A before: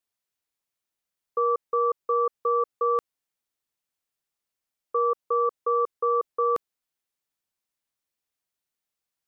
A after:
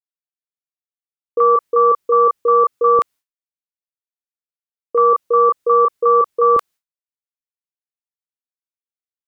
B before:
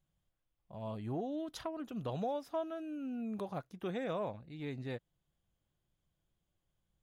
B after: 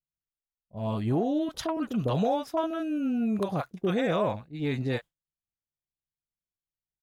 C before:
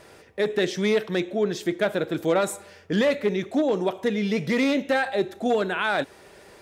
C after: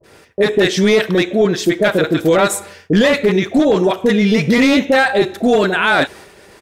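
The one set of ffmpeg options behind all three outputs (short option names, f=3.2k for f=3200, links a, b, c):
-filter_complex "[0:a]agate=range=-33dB:threshold=-43dB:ratio=3:detection=peak,acrossover=split=670[a][b];[b]adelay=30[c];[a][c]amix=inputs=2:normalize=0,apsyclip=18.5dB,volume=-6dB"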